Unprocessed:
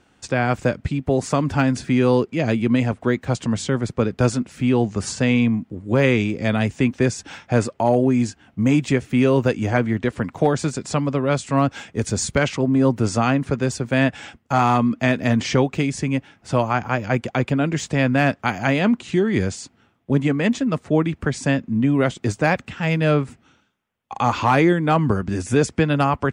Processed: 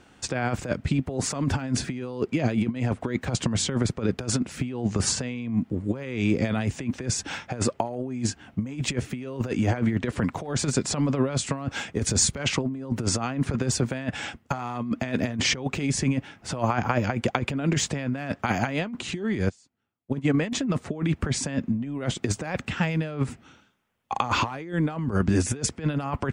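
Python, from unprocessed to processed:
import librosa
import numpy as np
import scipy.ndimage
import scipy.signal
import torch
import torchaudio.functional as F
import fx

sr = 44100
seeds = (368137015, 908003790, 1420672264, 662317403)

y = fx.upward_expand(x, sr, threshold_db=-31.0, expansion=2.5, at=(19.48, 20.33), fade=0.02)
y = fx.over_compress(y, sr, threshold_db=-23.0, ratio=-0.5)
y = F.gain(torch.from_numpy(y), -1.5).numpy()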